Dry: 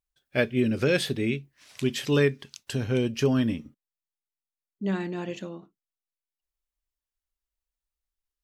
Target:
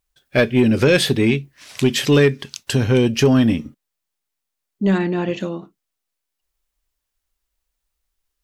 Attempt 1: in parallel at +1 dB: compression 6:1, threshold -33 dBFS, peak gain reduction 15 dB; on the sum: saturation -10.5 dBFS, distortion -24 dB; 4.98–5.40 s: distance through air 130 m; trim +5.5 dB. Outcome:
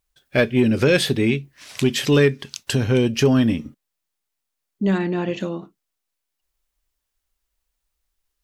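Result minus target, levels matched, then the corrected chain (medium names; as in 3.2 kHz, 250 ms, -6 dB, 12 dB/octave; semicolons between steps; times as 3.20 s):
compression: peak gain reduction +9 dB
in parallel at +1 dB: compression 6:1, threshold -22.5 dBFS, peak gain reduction 6 dB; on the sum: saturation -10.5 dBFS, distortion -20 dB; 4.98–5.40 s: distance through air 130 m; trim +5.5 dB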